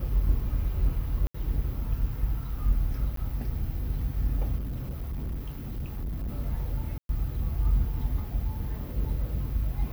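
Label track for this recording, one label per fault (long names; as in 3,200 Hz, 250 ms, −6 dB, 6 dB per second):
1.270000	1.340000	drop-out 74 ms
3.160000	3.170000	drop-out 13 ms
4.580000	6.290000	clipping −29.5 dBFS
6.980000	7.090000	drop-out 112 ms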